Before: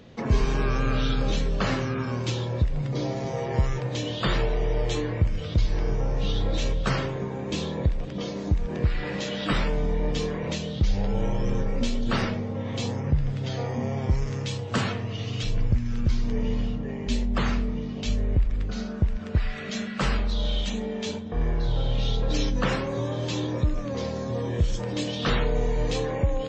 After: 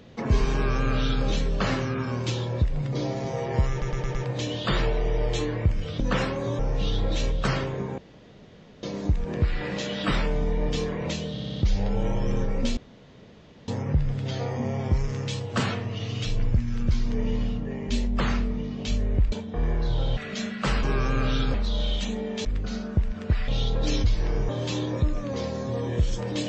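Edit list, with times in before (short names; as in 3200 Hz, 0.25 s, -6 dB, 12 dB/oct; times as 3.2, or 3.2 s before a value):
0.53–1.24 copy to 20.19
3.71 stutter 0.11 s, 5 plays
5.56–6.01 swap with 22.51–23.1
7.4–8.25 room tone
10.74 stutter 0.06 s, 5 plays
11.95–12.86 room tone
18.5–19.53 swap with 21.1–21.95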